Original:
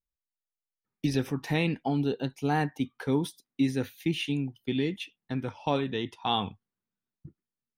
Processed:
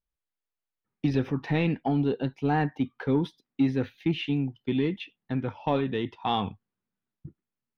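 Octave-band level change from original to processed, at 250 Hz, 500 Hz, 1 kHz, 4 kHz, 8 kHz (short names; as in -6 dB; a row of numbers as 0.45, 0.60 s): +2.5 dB, +2.0 dB, +1.5 dB, -3.0 dB, under -10 dB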